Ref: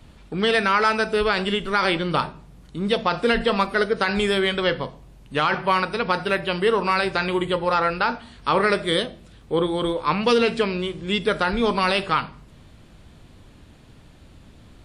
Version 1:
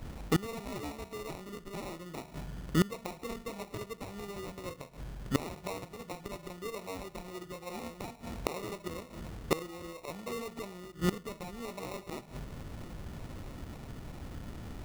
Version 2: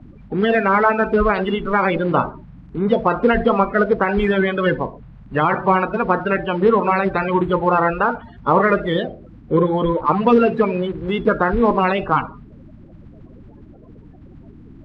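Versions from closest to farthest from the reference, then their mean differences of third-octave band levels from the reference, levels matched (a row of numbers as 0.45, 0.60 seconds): 2, 1; 6.5, 13.0 decibels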